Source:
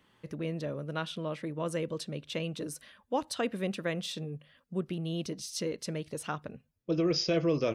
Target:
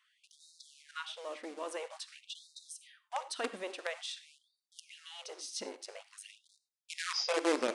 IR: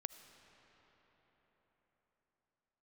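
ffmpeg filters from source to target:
-filter_complex "[0:a]acrossover=split=760|900[link_01][link_02][link_03];[link_01]acrusher=bits=5:dc=4:mix=0:aa=0.000001[link_04];[link_04][link_02][link_03]amix=inputs=3:normalize=0,asplit=3[link_05][link_06][link_07];[link_05]afade=type=out:start_time=5.63:duration=0.02[link_08];[link_06]aeval=exprs='val(0)*sin(2*PI*51*n/s)':channel_layout=same,afade=type=in:start_time=5.63:duration=0.02,afade=type=out:start_time=6.48:duration=0.02[link_09];[link_07]afade=type=in:start_time=6.48:duration=0.02[link_10];[link_08][link_09][link_10]amix=inputs=3:normalize=0,aresample=22050,aresample=44100[link_11];[1:a]atrim=start_sample=2205,afade=type=out:start_time=0.24:duration=0.01,atrim=end_sample=11025,asetrate=74970,aresample=44100[link_12];[link_11][link_12]afir=irnorm=-1:irlink=0,afftfilt=real='re*gte(b*sr/1024,210*pow(3700/210,0.5+0.5*sin(2*PI*0.49*pts/sr)))':imag='im*gte(b*sr/1024,210*pow(3700/210,0.5+0.5*sin(2*PI*0.49*pts/sr)))':win_size=1024:overlap=0.75,volume=5.5dB"

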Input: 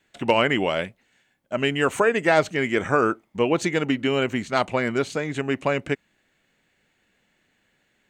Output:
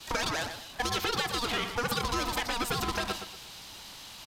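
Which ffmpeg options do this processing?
ffmpeg -i in.wav -filter_complex "[0:a]aeval=exprs='val(0)+0.5*0.0335*sgn(val(0))':channel_layout=same,highpass=frequency=42:poles=1,agate=range=-33dB:threshold=-27dB:ratio=3:detection=peak,equalizer=frequency=1800:width_type=o:width=1.3:gain=4.5,acompressor=threshold=-28dB:ratio=6,atempo=0.95,aresample=16000,aeval=exprs='clip(val(0),-1,0.0224)':channel_layout=same,aresample=44100,aeval=exprs='val(0)*sin(2*PI*240*n/s)':channel_layout=same,asplit=2[link_01][link_02];[link_02]adelay=235,lowpass=frequency=2000:poles=1,volume=-8.5dB,asplit=2[link_03][link_04];[link_04]adelay=235,lowpass=frequency=2000:poles=1,volume=0.32,asplit=2[link_05][link_06];[link_06]adelay=235,lowpass=frequency=2000:poles=1,volume=0.32,asplit=2[link_07][link_08];[link_08]adelay=235,lowpass=frequency=2000:poles=1,volume=0.32[link_09];[link_03][link_05][link_07][link_09]amix=inputs=4:normalize=0[link_10];[link_01][link_10]amix=inputs=2:normalize=0,asetrate=88200,aresample=44100,volume=5dB" out.wav

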